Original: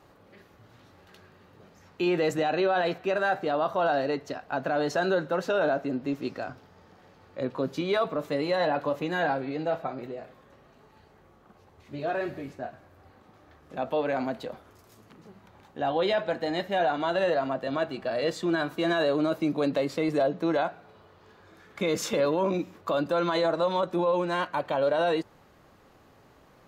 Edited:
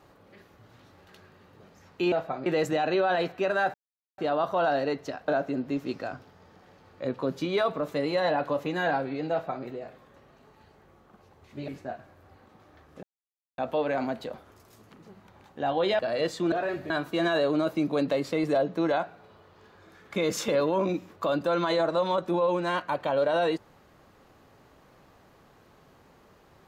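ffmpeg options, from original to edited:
-filter_complex "[0:a]asplit=10[a][b][c][d][e][f][g][h][i][j];[a]atrim=end=2.122[k];[b]atrim=start=9.668:end=10.012[l];[c]atrim=start=2.118:end=3.4,asetpts=PTS-STARTPTS,afade=t=out:st=1.278:d=0.004:c=hsin,apad=pad_dur=0.44[m];[d]atrim=start=3.4:end=4.502,asetpts=PTS-STARTPTS,afade=t=in:d=0.004:c=hsin[n];[e]atrim=start=5.638:end=12.042[o];[f]atrim=start=12.418:end=13.77,asetpts=PTS-STARTPTS,afade=t=out:st=1.348:d=0.004:c=hsin,apad=pad_dur=0.55[p];[g]atrim=start=13.77:end=16.182,asetpts=PTS-STARTPTS,afade=t=in:d=0.004:c=hsin[q];[h]atrim=start=18.018:end=18.552[r];[i]atrim=start=12.038:end=12.422[s];[j]atrim=start=18.548[t];[k][l]acrossfade=d=0.004:c1=hsin:c2=hsin[u];[m][n]concat=n=2:v=0:a=1[v];[u][v]acrossfade=d=0.004:c1=hsin:c2=hsin[w];[w][o]acrossfade=d=0.004:c1=hsin:c2=hsin[x];[p][q]concat=n=2:v=0:a=1[y];[x][y]acrossfade=d=0.004:c1=hsin:c2=hsin[z];[z][r]acrossfade=d=0.004:c1=hsin:c2=hsin[aa];[aa][s]acrossfade=d=0.004:c1=hsin:c2=hsin[ab];[ab][t]acrossfade=d=0.004:c1=hsin:c2=hsin"

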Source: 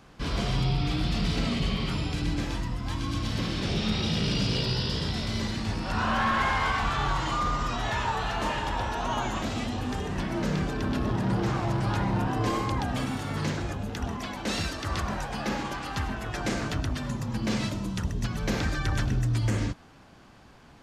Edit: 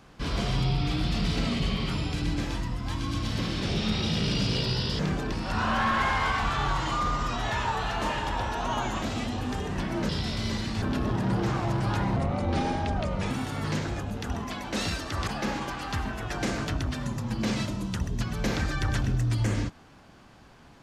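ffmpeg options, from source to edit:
-filter_complex "[0:a]asplit=8[a][b][c][d][e][f][g][h];[a]atrim=end=4.992[i];[b]atrim=start=10.488:end=10.822[j];[c]atrim=start=5.718:end=10.492[k];[d]atrim=start=4.988:end=5.722[l];[e]atrim=start=10.818:end=12.164[m];[f]atrim=start=12.16:end=13.03,asetpts=PTS-STARTPTS,asetrate=33516,aresample=44100[n];[g]atrim=start=13.026:end=15.002[o];[h]atrim=start=15.308[p];[i][j]acrossfade=d=0.004:c1=hsin:c2=hsin[q];[q][k]acrossfade=d=0.004:c1=hsin:c2=hsin[r];[r][l]acrossfade=d=0.004:c1=hsin:c2=hsin[s];[s][m]acrossfade=d=0.004:c1=hsin:c2=hsin[t];[t][n]acrossfade=d=0.004:c1=hsin:c2=hsin[u];[u][o]acrossfade=d=0.004:c1=hsin:c2=hsin[v];[v][p]acrossfade=d=0.004:c1=hsin:c2=hsin"

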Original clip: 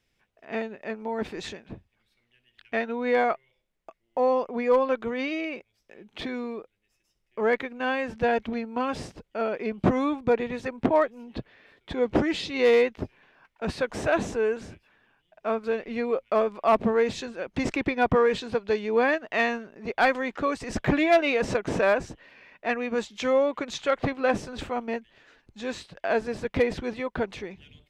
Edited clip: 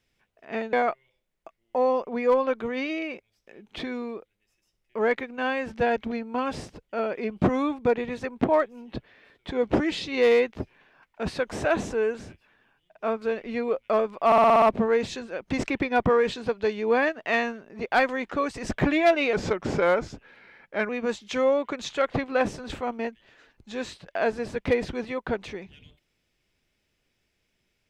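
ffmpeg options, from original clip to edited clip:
-filter_complex "[0:a]asplit=10[a][b][c][d][e][f][g][h][i][j];[a]atrim=end=0.732[k];[b]atrim=start=3.148:end=16.742[l];[c]atrim=start=16.678:end=16.742[m];[d]atrim=start=16.678:end=16.742[n];[e]atrim=start=16.678:end=16.742[o];[f]atrim=start=16.678:end=16.742[p];[g]atrim=start=16.678:end=16.742[q];[h]atrim=start=16.678:end=21.394[r];[i]atrim=start=21.39:end=22.78,asetpts=PTS-STARTPTS,asetrate=39249,aresample=44100,atrim=end_sample=68875,asetpts=PTS-STARTPTS[s];[j]atrim=start=22.776[t];[k][l]acrossfade=d=0.004:c1=hsin:c2=hsin[u];[u][m]acrossfade=d=0.004:c1=hsin:c2=hsin[v];[v][n]acrossfade=d=0.004:c1=hsin:c2=hsin[w];[w][o]acrossfade=d=0.004:c1=hsin:c2=hsin[x];[x][p]acrossfade=d=0.004:c1=hsin:c2=hsin[y];[y][q]acrossfade=d=0.004:c1=hsin:c2=hsin[z];[z][r]acrossfade=d=0.004:c1=hsin:c2=hsin[aa];[aa][s]acrossfade=d=0.004:c1=hsin:c2=hsin[ab];[ab][t]acrossfade=d=0.004:c1=hsin:c2=hsin"

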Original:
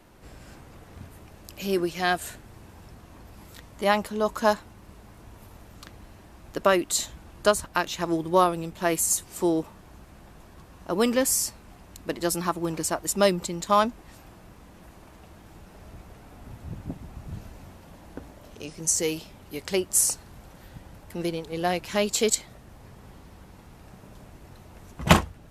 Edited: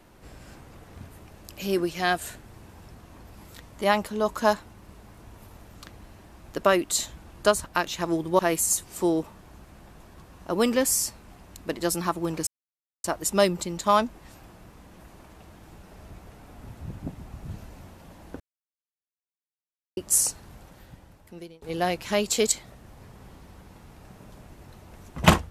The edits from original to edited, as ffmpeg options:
-filter_complex "[0:a]asplit=6[a][b][c][d][e][f];[a]atrim=end=8.392[g];[b]atrim=start=8.788:end=12.87,asetpts=PTS-STARTPTS,afade=t=out:st=4.078:d=0.004:c=hsin,apad=pad_dur=0.57[h];[c]atrim=start=12.87:end=18.23,asetpts=PTS-STARTPTS,afade=t=in:d=0.004:c=hsin,afade=t=out:st=5.356:d=0.004:c=hsin[i];[d]atrim=start=18.23:end=19.8,asetpts=PTS-STARTPTS,volume=0[j];[e]atrim=start=19.8:end=21.45,asetpts=PTS-STARTPTS,afade=t=in:d=0.004:c=hsin,afade=t=out:st=0.55:d=1.1:silence=0.0630957[k];[f]atrim=start=21.45,asetpts=PTS-STARTPTS,afade=t=in:d=0.004:c=hsin:silence=0.0630957[l];[h][i][j][k][l]concat=n=5:v=0:a=1[m];[g][m]acrossfade=d=0.004:c1=hsin:c2=hsin"

